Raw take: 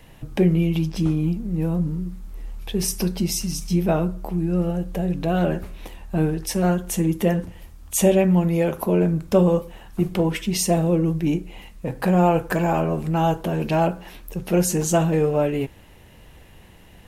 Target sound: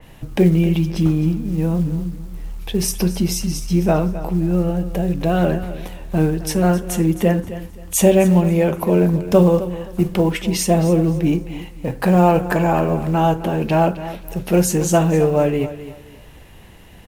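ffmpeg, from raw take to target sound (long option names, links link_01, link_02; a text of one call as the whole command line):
ffmpeg -i in.wav -filter_complex "[0:a]acrusher=bits=8:mode=log:mix=0:aa=0.000001,asplit=2[link_01][link_02];[link_02]aecho=0:1:263|526|789:0.2|0.0519|0.0135[link_03];[link_01][link_03]amix=inputs=2:normalize=0,adynamicequalizer=threshold=0.00708:dfrequency=3300:dqfactor=0.7:tfrequency=3300:tqfactor=0.7:attack=5:release=100:ratio=0.375:range=2:mode=cutabove:tftype=highshelf,volume=4dB" out.wav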